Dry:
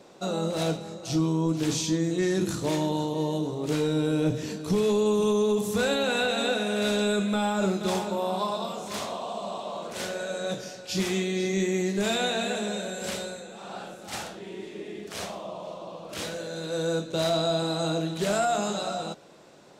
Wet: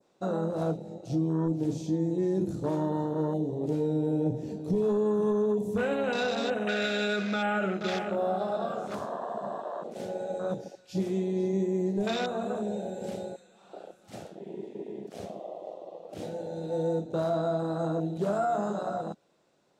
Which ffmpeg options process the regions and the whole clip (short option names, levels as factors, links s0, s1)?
-filter_complex "[0:a]asettb=1/sr,asplit=3[s0][s1][s2];[s0]atrim=end=6.674[s3];[s1]atrim=start=6.67:end=8.95,asetpts=PTS-STARTPTS,afade=t=in:d=0.004:c=qsin,afade=t=out:st=2.276:d=0.004:c=qsin,asuperstop=centerf=990:order=4:qfactor=2.7,equalizer=f=2000:w=0.54:g=13.5[s4];[s2]atrim=start=8.946[s5];[s3][s4]acrossfade=d=0.004:c1=hsin:c2=qsin[s6];[s6][s5]acrossfade=d=0.004:c1=qsin:c2=hsin,afwtdn=0.0316,adynamicequalizer=threshold=0.00501:dfrequency=2800:dqfactor=0.82:tfrequency=2800:tqfactor=0.82:attack=5:release=100:ratio=0.375:range=2.5:mode=cutabove:tftype=bell,alimiter=limit=0.1:level=0:latency=1:release=486"